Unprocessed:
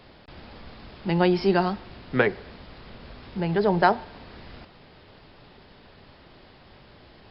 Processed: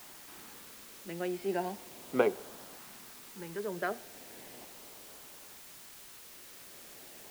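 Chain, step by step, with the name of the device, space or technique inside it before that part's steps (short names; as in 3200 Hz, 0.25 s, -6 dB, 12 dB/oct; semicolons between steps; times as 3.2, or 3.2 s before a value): shortwave radio (BPF 290–2500 Hz; tremolo 0.42 Hz, depth 67%; LFO notch saw up 0.36 Hz 450–2500 Hz; white noise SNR 12 dB); gain -2.5 dB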